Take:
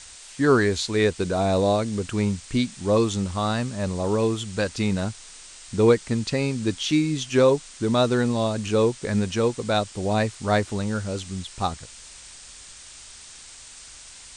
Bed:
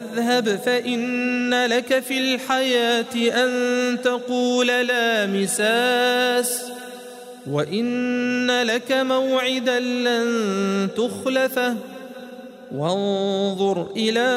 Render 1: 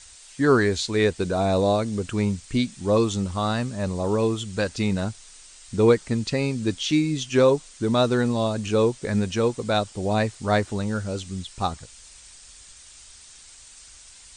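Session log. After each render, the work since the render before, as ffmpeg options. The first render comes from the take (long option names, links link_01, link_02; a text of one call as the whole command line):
ffmpeg -i in.wav -af "afftdn=noise_reduction=6:noise_floor=-45" out.wav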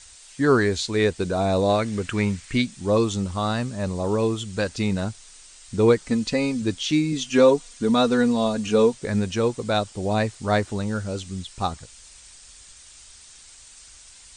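ffmpeg -i in.wav -filter_complex "[0:a]asettb=1/sr,asplit=3[link_01][link_02][link_03];[link_01]atrim=end=1.694[link_04];[link_02]atrim=start=1.69:end=2.62,asetpts=PTS-STARTPTS,afade=type=in:duration=0.004:curve=qsin,afade=type=out:start_time=0.926:duration=0.004:curve=qsin,equalizer=frequency=1900:width_type=o:width=1.3:gain=9[link_05];[link_03]atrim=start=2.616[link_06];[link_04][link_05]acrossfade=duration=0.004:curve1=hsin:curve2=qsin[link_07];[link_07][link_06]acrossfade=duration=0.004:curve1=qsin:curve2=hsin,asettb=1/sr,asplit=3[link_08][link_09][link_10];[link_08]atrim=end=6.064[link_11];[link_09]atrim=start=6.06:end=6.62,asetpts=PTS-STARTPTS,afade=type=in:duration=0.004:curve=qsin,afade=type=out:start_time=0.556:duration=0.004:curve=qsin,aecho=1:1:4:0.63,atrim=end_sample=24696[link_12];[link_10]atrim=start=6.616[link_13];[link_11][link_12]acrossfade=duration=0.004:curve1=hsin:curve2=qsin[link_14];[link_14][link_13]acrossfade=duration=0.004:curve1=qsin:curve2=hsin,asettb=1/sr,asplit=3[link_15][link_16][link_17];[link_15]atrim=end=7.124[link_18];[link_16]atrim=start=7.12:end=8.94,asetpts=PTS-STARTPTS,afade=type=in:duration=0.004:curve=qsin,afade=type=out:start_time=1.816:duration=0.004:curve=qsin,aecho=1:1:4.2:0.65,atrim=end_sample=80262[link_19];[link_17]atrim=start=8.936[link_20];[link_18][link_19]acrossfade=duration=0.004:curve1=hsin:curve2=qsin[link_21];[link_21][link_20]acrossfade=duration=0.004:curve1=qsin:curve2=hsin" out.wav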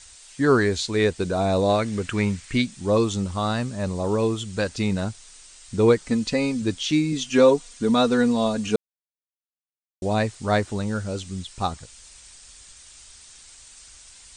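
ffmpeg -i in.wav -filter_complex "[0:a]asplit=3[link_01][link_02][link_03];[link_01]atrim=end=8.76,asetpts=PTS-STARTPTS,afade=type=out:start_time=8.756:duration=0.004:curve=hsin[link_04];[link_02]atrim=start=8.76:end=10.02,asetpts=PTS-STARTPTS,volume=0[link_05];[link_03]atrim=start=10.02,asetpts=PTS-STARTPTS,afade=type=in:duration=0.004:curve=hsin[link_06];[link_04][link_05][link_06]concat=n=3:v=0:a=1" out.wav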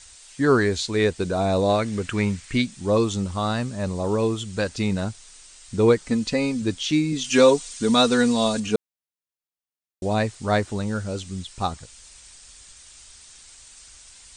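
ffmpeg -i in.wav -filter_complex "[0:a]asettb=1/sr,asplit=3[link_01][link_02][link_03];[link_01]atrim=end=7.244[link_04];[link_02]atrim=start=7.24:end=8.6,asetpts=PTS-STARTPTS,afade=type=in:duration=0.004:curve=qsin,afade=type=out:start_time=1.356:duration=0.004:curve=qsin,highshelf=frequency=2300:gain=9.5[link_05];[link_03]atrim=start=8.596[link_06];[link_04][link_05]acrossfade=duration=0.004:curve1=hsin:curve2=qsin[link_07];[link_07][link_06]acrossfade=duration=0.004:curve1=qsin:curve2=hsin" out.wav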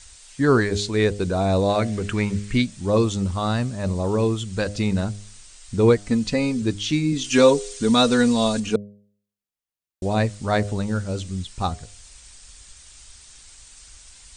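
ffmpeg -i in.wav -af "lowshelf=frequency=130:gain=8,bandreject=frequency=102.1:width_type=h:width=4,bandreject=frequency=204.2:width_type=h:width=4,bandreject=frequency=306.3:width_type=h:width=4,bandreject=frequency=408.4:width_type=h:width=4,bandreject=frequency=510.5:width_type=h:width=4,bandreject=frequency=612.6:width_type=h:width=4,bandreject=frequency=714.7:width_type=h:width=4" out.wav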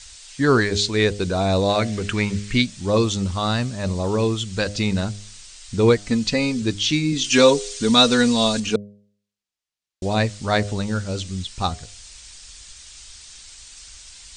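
ffmpeg -i in.wav -af "lowpass=5700,highshelf=frequency=2600:gain=11" out.wav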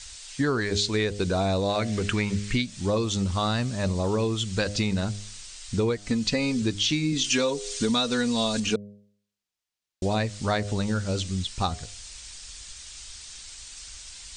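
ffmpeg -i in.wav -af "acompressor=threshold=-21dB:ratio=12" out.wav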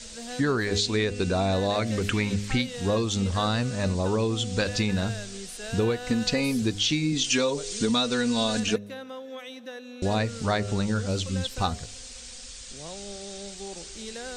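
ffmpeg -i in.wav -i bed.wav -filter_complex "[1:a]volume=-19.5dB[link_01];[0:a][link_01]amix=inputs=2:normalize=0" out.wav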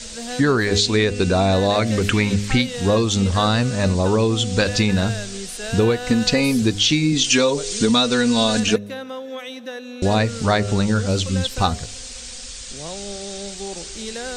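ffmpeg -i in.wav -af "volume=7.5dB" out.wav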